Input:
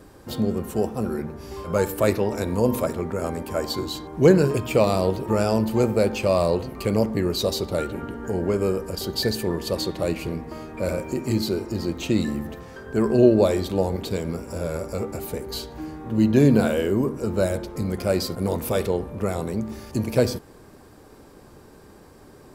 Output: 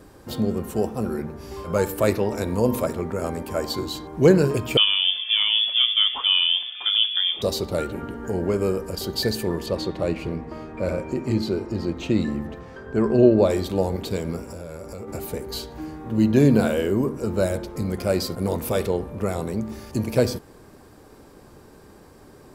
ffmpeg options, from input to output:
-filter_complex "[0:a]asettb=1/sr,asplit=3[s0][s1][s2];[s0]atrim=end=4.774[s3];[s1]atrim=start=4.77:end=7.42,asetpts=PTS-STARTPTS,afade=t=in:d=0.004:c=qsin,afade=t=out:st=2.646:d=0.004:c=qsin,lowpass=f=3100:t=q:w=0.5098,lowpass=f=3100:t=q:w=0.6013,lowpass=f=3100:t=q:w=0.9,lowpass=f=3100:t=q:w=2.563,afreqshift=-3600[s4];[s2]atrim=start=7.416[s5];[s3][s4]acrossfade=d=0.004:c1=hsin:c2=qsin[s6];[s6][s5]acrossfade=d=0.004:c1=qsin:c2=hsin,asettb=1/sr,asplit=3[s7][s8][s9];[s7]atrim=end=9.664[s10];[s8]atrim=start=9.66:end=13.5,asetpts=PTS-STARTPTS,afade=t=in:d=0.004:c=qsin,afade=t=out:st=3.836:d=0.004:c=qsin,aemphasis=mode=reproduction:type=50fm[s11];[s9]atrim=start=13.496[s12];[s10][s11]acrossfade=d=0.004:c1=hsin:c2=qsin[s13];[s13][s12]acrossfade=d=0.004:c1=qsin:c2=hsin,asplit=3[s14][s15][s16];[s14]afade=t=out:st=14.44:d=0.02[s17];[s15]acompressor=threshold=0.0224:ratio=4:attack=3.2:release=140:knee=1:detection=peak,afade=t=in:st=14.44:d=0.02,afade=t=out:st=15.07:d=0.02[s18];[s16]afade=t=in:st=15.07:d=0.02[s19];[s17][s18][s19]amix=inputs=3:normalize=0"

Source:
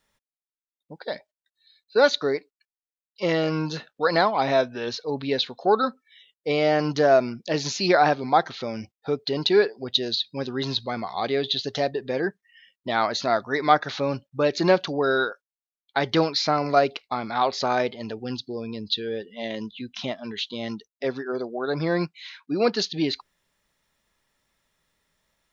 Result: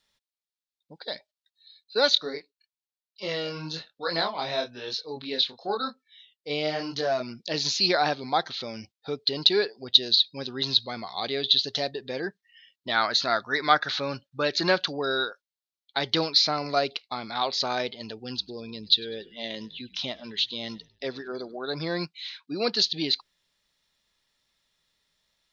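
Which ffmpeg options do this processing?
-filter_complex "[0:a]asplit=3[s0][s1][s2];[s0]afade=t=out:st=2.15:d=0.02[s3];[s1]flanger=delay=22.5:depth=5:speed=1,afade=t=in:st=2.15:d=0.02,afade=t=out:st=7.28:d=0.02[s4];[s2]afade=t=in:st=7.28:d=0.02[s5];[s3][s4][s5]amix=inputs=3:normalize=0,asettb=1/sr,asplit=3[s6][s7][s8];[s6]atrim=end=12.884[s9];[s7]atrim=start=12.88:end=14.97,asetpts=PTS-STARTPTS,afade=t=in:d=0.004:c=qsin,afade=t=out:st=2.086:d=0.004:c=qsin,equalizer=f=1500:t=o:w=0.77:g=8[s10];[s8]atrim=start=14.966[s11];[s9][s10]acrossfade=d=0.004:c1=hsin:c2=qsin[s12];[s12][s11]acrossfade=d=0.004:c1=qsin:c2=hsin,asettb=1/sr,asplit=3[s13][s14][s15];[s13]atrim=end=18.274[s16];[s14]atrim=start=18.27:end=21.57,asetpts=PTS-STARTPTS,afade=t=in:d=0.004:c=qsin,afade=t=out:st=3.296:d=0.004:c=qsin,asplit=4[s17][s18][s19][s20];[s18]adelay=100,afreqshift=-60,volume=0.0794[s21];[s19]adelay=200,afreqshift=-120,volume=0.0302[s22];[s20]adelay=300,afreqshift=-180,volume=0.0115[s23];[s17][s21][s22][s23]amix=inputs=4:normalize=0,atrim=end_sample=145530[s24];[s15]atrim=start=21.566[s25];[s16][s24]acrossfade=d=0.004:c1=hsin:c2=qsin[s26];[s26][s25]acrossfade=d=0.004:c1=qsin:c2=hsin,equalizer=f=4100:t=o:w=1.2:g=12.5,volume=0.473"

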